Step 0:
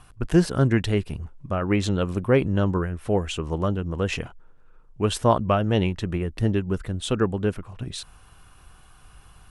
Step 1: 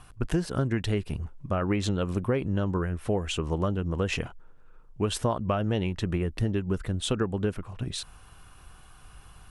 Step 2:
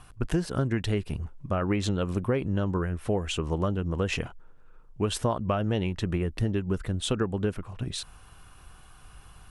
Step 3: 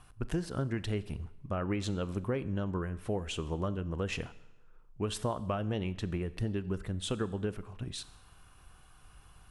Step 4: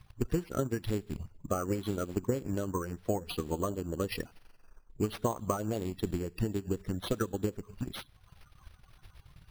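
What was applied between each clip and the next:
compression 10:1, threshold -22 dBFS, peak gain reduction 11 dB
no audible change
Schroeder reverb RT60 0.89 s, combs from 29 ms, DRR 16 dB; trim -6.5 dB
coarse spectral quantiser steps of 30 dB; careless resampling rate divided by 6×, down none, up hold; transient shaper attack +5 dB, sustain -8 dB

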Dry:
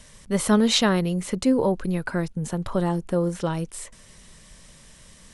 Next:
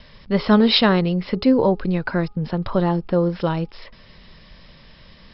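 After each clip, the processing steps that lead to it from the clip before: Chebyshev low-pass 5.3 kHz, order 10; de-hum 413.6 Hz, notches 3; trim +5 dB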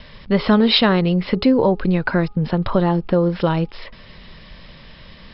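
Chebyshev low-pass 3.8 kHz, order 2; compression 2:1, threshold -20 dBFS, peak gain reduction 6 dB; trim +6 dB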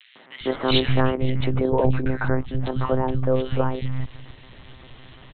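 monotone LPC vocoder at 8 kHz 130 Hz; three bands offset in time highs, mids, lows 150/400 ms, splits 220/2000 Hz; trim -2.5 dB

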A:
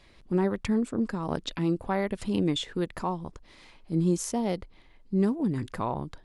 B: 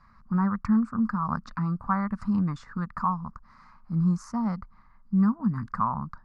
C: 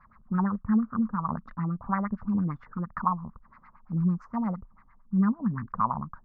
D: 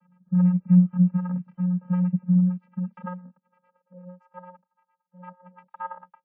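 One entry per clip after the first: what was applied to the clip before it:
FFT filter 120 Hz 0 dB, 220 Hz +5 dB, 330 Hz -19 dB, 480 Hz -17 dB, 720 Hz -7 dB, 1.2 kHz +14 dB, 3.3 kHz -27 dB, 4.7 kHz -8 dB, 13 kHz -27 dB
LFO low-pass sine 8.8 Hz 390–2400 Hz; trim -2.5 dB
vocoder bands 8, square 180 Hz; high-pass sweep 170 Hz -> 800 Hz, 2.56–4.55 s; WMA 64 kbps 32 kHz

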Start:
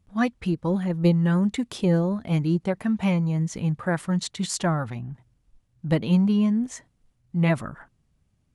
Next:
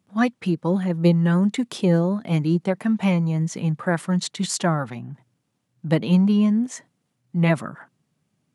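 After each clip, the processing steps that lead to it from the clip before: high-pass 140 Hz 24 dB/octave; trim +3 dB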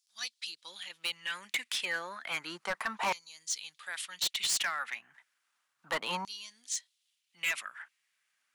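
LFO high-pass saw down 0.32 Hz 960–5100 Hz; hard clipper -26.5 dBFS, distortion -8 dB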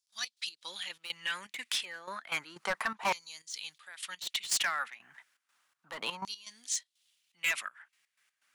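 in parallel at -1 dB: compression, threshold -44 dBFS, peak gain reduction 14.5 dB; on the sum: trance gate ".x.x.xxx.xxx.xx." 123 bpm -12 dB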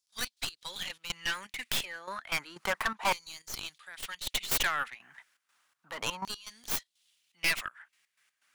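tracing distortion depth 0.15 ms; trim +2 dB

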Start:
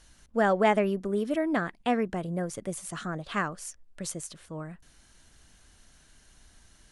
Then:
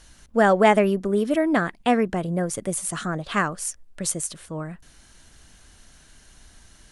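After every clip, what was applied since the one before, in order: dynamic bell 9.6 kHz, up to +6 dB, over -55 dBFS, Q 1.3; trim +6.5 dB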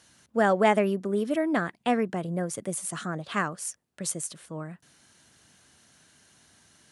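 high-pass 100 Hz 24 dB/octave; trim -5 dB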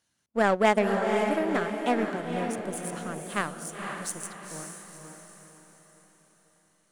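power-law waveshaper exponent 1.4; echo that smears into a reverb 501 ms, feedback 45%, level -4.5 dB; trim +2 dB

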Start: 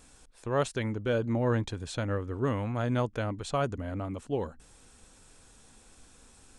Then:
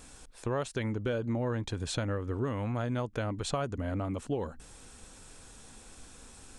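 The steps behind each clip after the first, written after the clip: compression 6:1, threshold -34 dBFS, peak gain reduction 11.5 dB; trim +5 dB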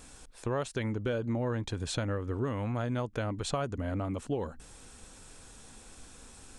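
no audible change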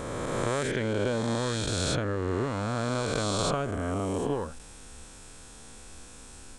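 reverse spectral sustain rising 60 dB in 2.95 s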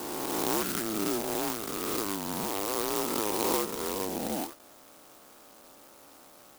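mistuned SSB -210 Hz 550–2400 Hz; sampling jitter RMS 0.15 ms; trim +4 dB

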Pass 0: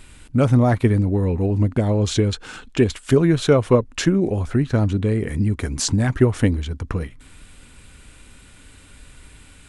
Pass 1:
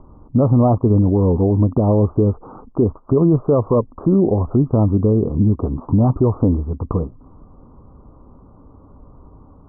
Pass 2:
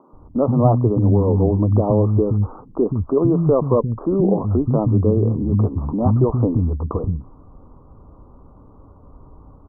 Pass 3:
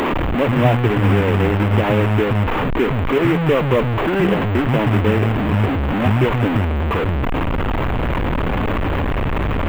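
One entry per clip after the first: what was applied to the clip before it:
steep low-pass 1.2 kHz 96 dB/octave; bass shelf 72 Hz -8.5 dB; peak limiter -14 dBFS, peak gain reduction 10 dB; trim +7 dB
bands offset in time highs, lows 130 ms, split 220 Hz
one-bit delta coder 16 kbps, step -12.5 dBFS; in parallel at -7 dB: bit crusher 5-bit; on the sum: trim -3.5 dB

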